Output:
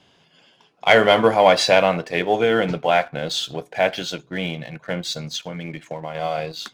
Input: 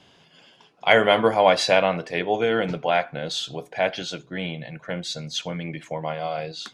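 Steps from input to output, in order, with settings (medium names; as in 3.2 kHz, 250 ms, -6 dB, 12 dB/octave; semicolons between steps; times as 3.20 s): waveshaping leveller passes 1; 5.35–6.15 s: compression 5:1, threshold -27 dBFS, peak gain reduction 7.5 dB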